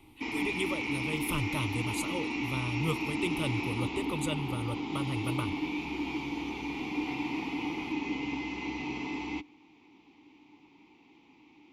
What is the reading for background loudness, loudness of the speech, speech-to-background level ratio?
−34.5 LKFS, −36.0 LKFS, −1.5 dB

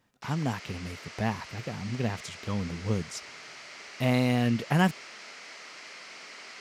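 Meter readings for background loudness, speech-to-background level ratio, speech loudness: −43.5 LKFS, 13.5 dB, −30.0 LKFS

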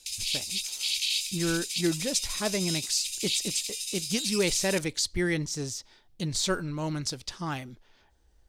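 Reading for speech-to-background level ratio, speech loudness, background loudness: 0.0 dB, −30.0 LKFS, −30.0 LKFS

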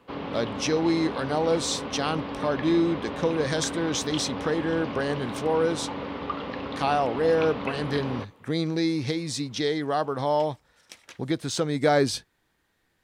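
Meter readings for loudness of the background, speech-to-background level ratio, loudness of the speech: −34.0 LKFS, 7.5 dB, −26.5 LKFS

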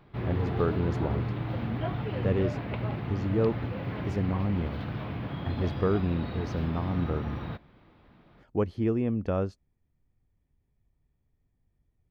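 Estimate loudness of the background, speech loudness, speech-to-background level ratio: −34.0 LKFS, −31.0 LKFS, 3.0 dB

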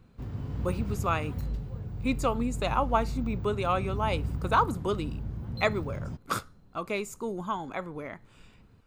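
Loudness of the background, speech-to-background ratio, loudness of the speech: −36.0 LKFS, 4.5 dB, −31.5 LKFS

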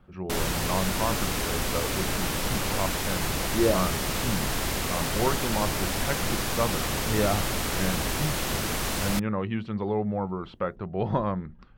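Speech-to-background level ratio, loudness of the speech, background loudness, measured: −3.5 dB, −31.5 LKFS, −28.0 LKFS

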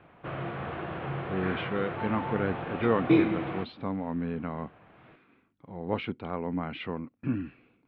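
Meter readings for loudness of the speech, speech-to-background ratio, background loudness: −33.0 LKFS, −1.0 dB, −32.0 LKFS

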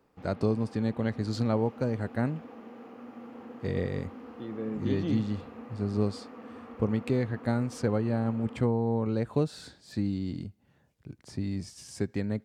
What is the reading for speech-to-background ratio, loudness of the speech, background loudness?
15.5 dB, −31.0 LKFS, −46.5 LKFS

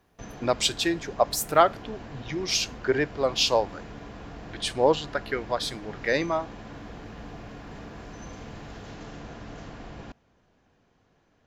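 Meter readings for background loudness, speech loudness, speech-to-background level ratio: −42.5 LKFS, −26.0 LKFS, 16.5 dB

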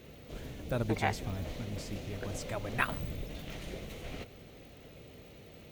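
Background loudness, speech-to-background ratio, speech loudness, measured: −45.0 LKFS, 8.0 dB, −37.0 LKFS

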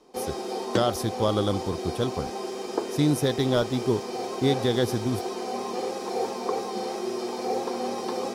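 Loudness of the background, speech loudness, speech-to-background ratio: −31.5 LKFS, −27.0 LKFS, 4.5 dB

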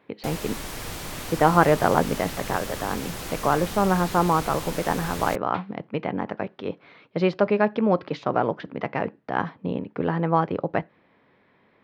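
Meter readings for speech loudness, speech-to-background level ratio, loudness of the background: −25.0 LKFS, 9.0 dB, −34.0 LKFS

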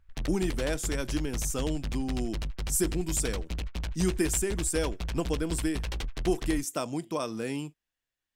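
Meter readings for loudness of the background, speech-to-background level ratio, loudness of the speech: −37.0 LKFS, 5.5 dB, −31.5 LKFS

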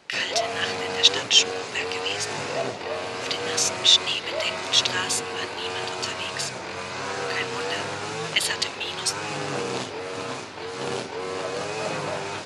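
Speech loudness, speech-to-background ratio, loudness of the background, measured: −24.0 LKFS, 6.0 dB, −30.0 LKFS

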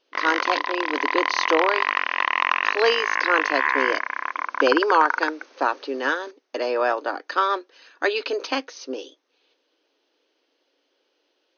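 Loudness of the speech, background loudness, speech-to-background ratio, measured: −25.0 LKFS, −23.5 LKFS, −1.5 dB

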